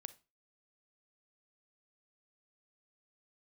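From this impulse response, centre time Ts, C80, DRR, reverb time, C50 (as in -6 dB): 3 ms, 24.0 dB, 14.0 dB, 0.30 s, 17.0 dB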